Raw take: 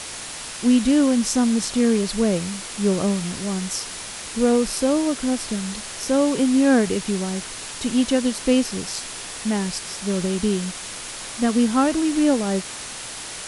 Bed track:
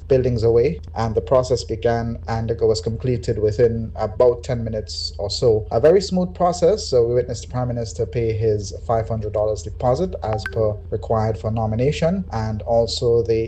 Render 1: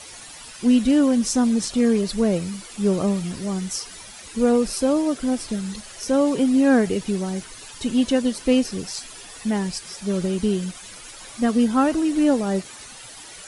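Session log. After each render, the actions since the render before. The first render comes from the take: denoiser 12 dB, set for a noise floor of -34 dBFS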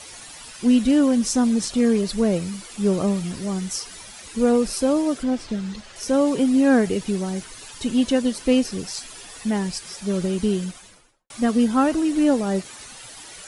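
5.23–5.96 air absorption 92 m; 10.57–11.3 studio fade out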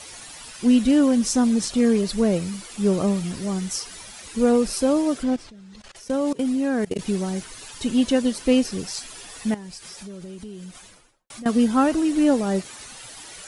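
5.36–6.99 level quantiser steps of 22 dB; 9.54–11.46 compressor 5:1, threshold -36 dBFS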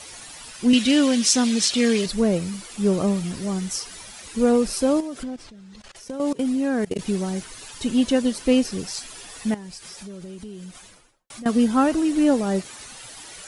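0.73–2.06 weighting filter D; 5–6.2 compressor, threshold -28 dBFS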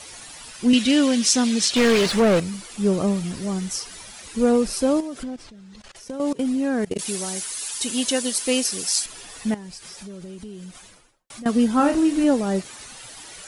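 1.76–2.4 overdrive pedal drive 25 dB, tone 2200 Hz, clips at -9.5 dBFS; 6.98–9.06 RIAA curve recording; 11.77–12.24 flutter echo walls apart 4.8 m, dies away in 0.23 s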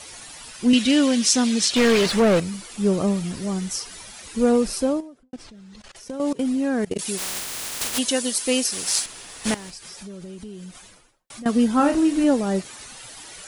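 4.7–5.33 studio fade out; 7.17–7.97 spectral contrast lowered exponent 0.13; 8.72–9.7 spectral contrast lowered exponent 0.61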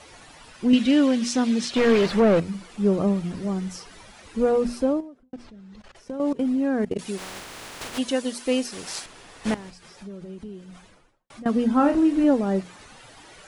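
LPF 1600 Hz 6 dB/oct; notches 60/120/180/240 Hz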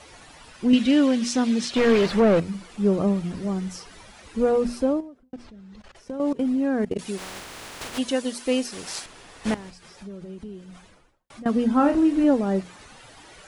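bell 61 Hz +7.5 dB 0.3 oct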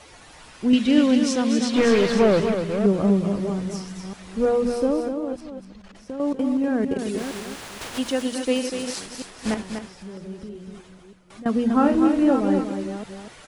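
reverse delay 0.318 s, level -8 dB; echo 0.244 s -7 dB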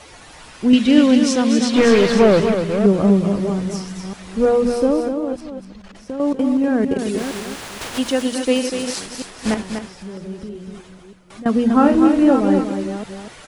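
gain +5 dB

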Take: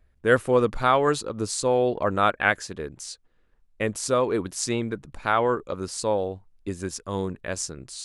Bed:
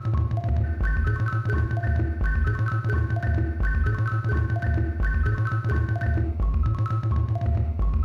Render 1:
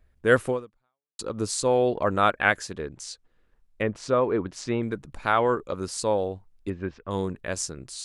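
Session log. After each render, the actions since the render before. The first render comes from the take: 0.49–1.19 fade out exponential; 2.7–4.83 treble ducked by the level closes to 2100 Hz, closed at -23.5 dBFS; 6.7–7.11 LPF 2800 Hz 24 dB/oct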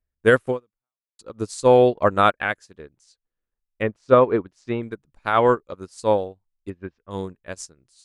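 maximiser +10 dB; upward expander 2.5:1, over -29 dBFS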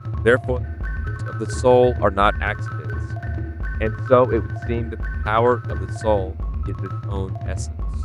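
add bed -3 dB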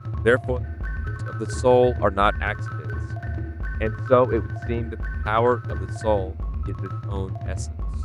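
gain -2.5 dB

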